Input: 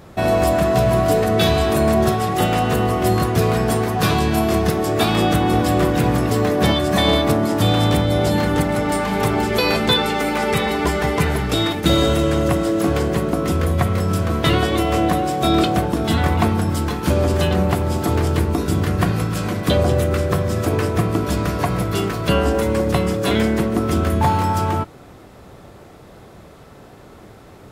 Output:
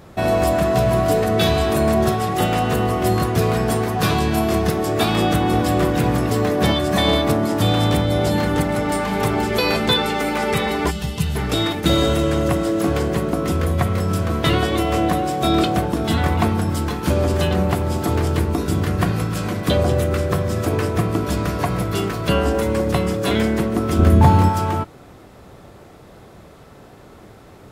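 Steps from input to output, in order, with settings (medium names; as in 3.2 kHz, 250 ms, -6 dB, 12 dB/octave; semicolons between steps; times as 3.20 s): 10.91–11.36 s: time-frequency box 230–2500 Hz -13 dB; 23.99–24.49 s: bass shelf 430 Hz +9 dB; trim -1 dB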